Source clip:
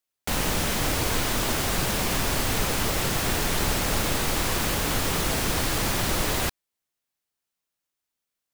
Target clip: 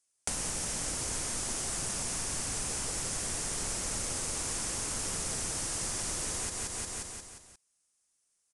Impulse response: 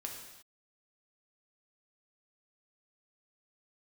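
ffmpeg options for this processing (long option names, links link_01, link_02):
-filter_complex "[0:a]aecho=1:1:177|354|531|708|885|1062:0.531|0.271|0.138|0.0704|0.0359|0.0183,acrossover=split=3900[link_01][link_02];[link_02]aexciter=amount=6.2:drive=2.1:freq=5100[link_03];[link_01][link_03]amix=inputs=2:normalize=0,acompressor=threshold=-27dB:ratio=10,aresample=22050,aresample=44100"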